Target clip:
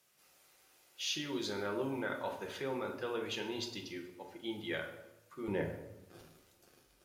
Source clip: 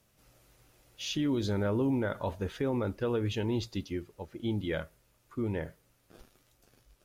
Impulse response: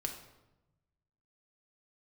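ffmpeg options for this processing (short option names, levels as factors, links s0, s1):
-filter_complex "[0:a]asetnsamples=n=441:p=0,asendcmd='5.48 highpass f 240',highpass=f=1100:p=1[s0];[1:a]atrim=start_sample=2205[s1];[s0][s1]afir=irnorm=-1:irlink=0,volume=1.12"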